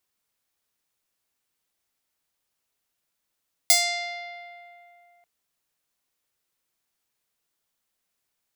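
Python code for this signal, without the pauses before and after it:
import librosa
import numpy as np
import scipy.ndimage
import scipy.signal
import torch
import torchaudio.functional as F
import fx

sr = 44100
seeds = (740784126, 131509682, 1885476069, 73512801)

y = fx.pluck(sr, length_s=1.54, note=77, decay_s=2.87, pick=0.47, brightness='bright')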